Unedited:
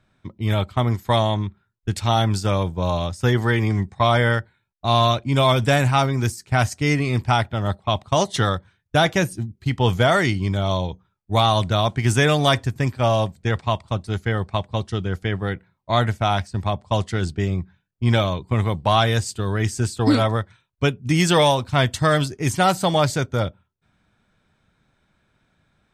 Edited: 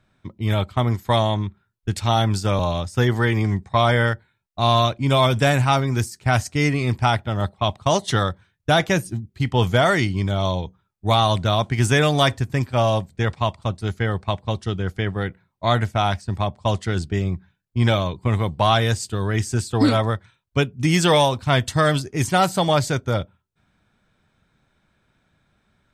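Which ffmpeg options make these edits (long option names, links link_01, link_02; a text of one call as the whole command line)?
ffmpeg -i in.wav -filter_complex "[0:a]asplit=2[link_01][link_02];[link_01]atrim=end=2.592[link_03];[link_02]atrim=start=2.848[link_04];[link_03][link_04]acrossfade=duration=0.004:curve1=hsin:curve2=hsin" out.wav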